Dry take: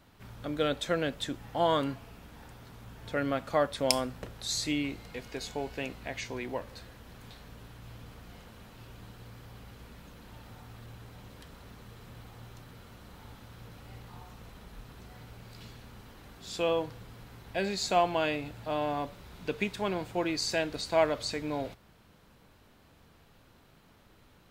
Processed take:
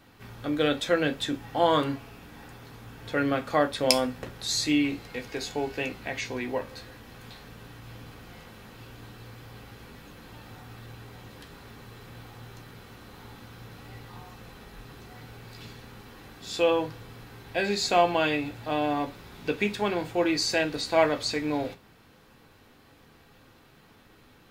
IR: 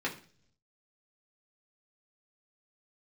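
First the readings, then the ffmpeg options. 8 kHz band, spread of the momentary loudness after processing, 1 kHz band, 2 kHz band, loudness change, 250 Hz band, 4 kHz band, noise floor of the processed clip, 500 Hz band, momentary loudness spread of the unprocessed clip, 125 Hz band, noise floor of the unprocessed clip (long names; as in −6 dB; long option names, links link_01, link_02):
+3.5 dB, 23 LU, +4.0 dB, +6.0 dB, +4.5 dB, +6.0 dB, +5.0 dB, −57 dBFS, +4.0 dB, 22 LU, +2.5 dB, −60 dBFS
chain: -filter_complex "[0:a]asplit=2[link_01][link_02];[link_02]highshelf=frequency=3400:gain=8[link_03];[1:a]atrim=start_sample=2205,atrim=end_sample=3087[link_04];[link_03][link_04]afir=irnorm=-1:irlink=0,volume=-6.5dB[link_05];[link_01][link_05]amix=inputs=2:normalize=0"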